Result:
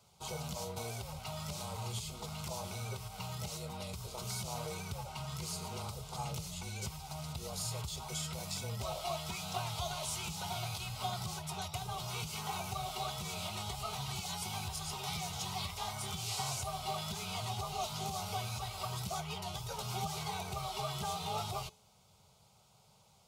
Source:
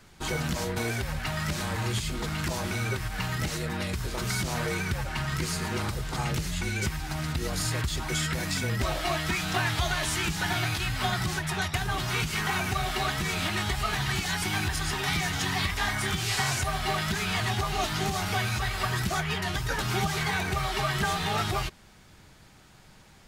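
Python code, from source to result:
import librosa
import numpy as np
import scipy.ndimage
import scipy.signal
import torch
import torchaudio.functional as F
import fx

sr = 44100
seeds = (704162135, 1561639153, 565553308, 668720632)

y = scipy.signal.sosfilt(scipy.signal.butter(2, 97.0, 'highpass', fs=sr, output='sos'), x)
y = fx.fixed_phaser(y, sr, hz=720.0, stages=4)
y = fx.comb_fb(y, sr, f0_hz=430.0, decay_s=0.53, harmonics='all', damping=0.0, mix_pct=60)
y = F.gain(torch.from_numpy(y), 1.0).numpy()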